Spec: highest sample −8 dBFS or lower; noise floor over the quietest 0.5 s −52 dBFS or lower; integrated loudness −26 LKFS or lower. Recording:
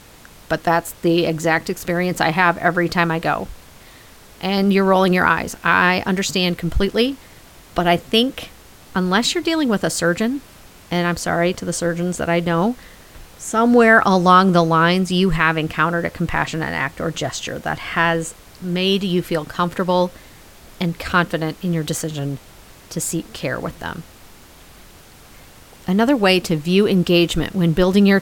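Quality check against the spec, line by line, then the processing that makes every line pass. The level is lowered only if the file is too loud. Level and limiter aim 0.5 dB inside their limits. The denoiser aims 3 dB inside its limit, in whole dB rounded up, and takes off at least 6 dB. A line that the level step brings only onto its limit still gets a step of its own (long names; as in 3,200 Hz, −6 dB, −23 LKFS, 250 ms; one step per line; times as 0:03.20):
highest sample −1.5 dBFS: out of spec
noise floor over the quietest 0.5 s −44 dBFS: out of spec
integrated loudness −18.5 LKFS: out of spec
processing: broadband denoise 6 dB, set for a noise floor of −44 dBFS
level −8 dB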